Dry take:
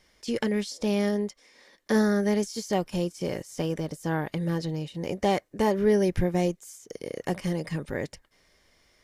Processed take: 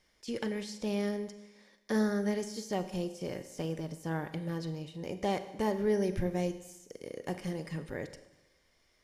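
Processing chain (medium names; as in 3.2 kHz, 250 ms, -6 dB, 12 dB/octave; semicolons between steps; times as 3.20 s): Schroeder reverb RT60 1 s, combs from 33 ms, DRR 10.5 dB; trim -7.5 dB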